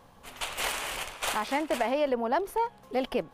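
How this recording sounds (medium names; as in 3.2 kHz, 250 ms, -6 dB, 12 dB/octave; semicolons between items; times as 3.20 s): noise floor -56 dBFS; spectral tilt -2.5 dB/octave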